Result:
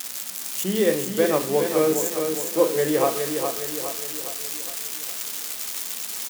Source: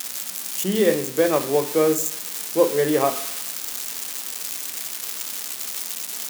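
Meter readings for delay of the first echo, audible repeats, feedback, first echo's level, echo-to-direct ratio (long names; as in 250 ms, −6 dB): 412 ms, 5, 51%, −6.0 dB, −4.5 dB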